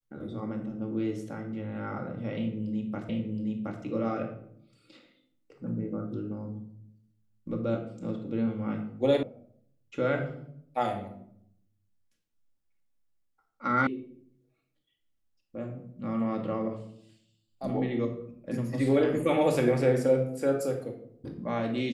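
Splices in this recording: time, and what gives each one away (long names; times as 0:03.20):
0:03.09: the same again, the last 0.72 s
0:09.23: cut off before it has died away
0:13.87: cut off before it has died away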